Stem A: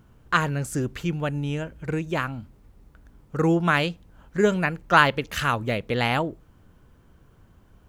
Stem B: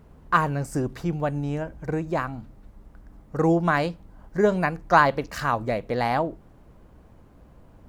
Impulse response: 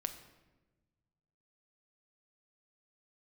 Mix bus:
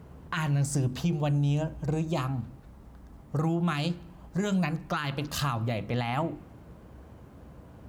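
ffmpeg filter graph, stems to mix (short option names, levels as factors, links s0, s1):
-filter_complex "[0:a]highpass=f=100:w=0.5412,highpass=f=100:w=1.3066,volume=0.531,asplit=2[s0][s1];[s1]volume=0.282[s2];[1:a]lowshelf=f=390:g=3,bandreject=f=50:t=h:w=6,bandreject=f=100:t=h:w=6,bandreject=f=150:t=h:w=6,bandreject=f=200:t=h:w=6,bandreject=f=250:t=h:w=6,bandreject=f=300:t=h:w=6,bandreject=f=350:t=h:w=6,acompressor=threshold=0.0631:ratio=3,volume=-1,volume=1.06,asplit=2[s3][s4];[s4]volume=0.224[s5];[2:a]atrim=start_sample=2205[s6];[s2][s5]amix=inputs=2:normalize=0[s7];[s7][s6]afir=irnorm=-1:irlink=0[s8];[s0][s3][s8]amix=inputs=3:normalize=0,highpass=f=53:w=0.5412,highpass=f=53:w=1.3066,alimiter=limit=0.1:level=0:latency=1:release=24"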